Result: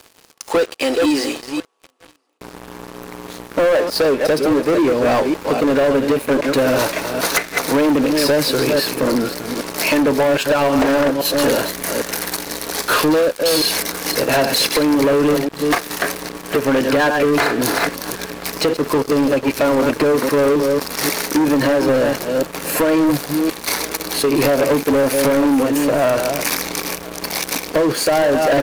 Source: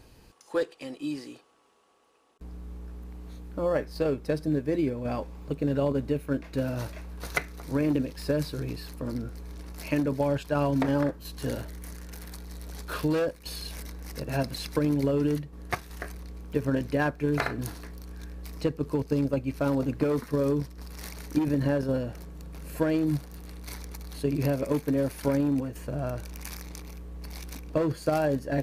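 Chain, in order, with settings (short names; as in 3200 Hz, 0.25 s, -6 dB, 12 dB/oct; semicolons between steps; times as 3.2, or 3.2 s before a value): reverse delay 0.267 s, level -10 dB; HPF 370 Hz 12 dB/oct; compressor, threshold -31 dBFS, peak gain reduction 9.5 dB; echo 1.021 s -24 dB; sample leveller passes 5; gain +6.5 dB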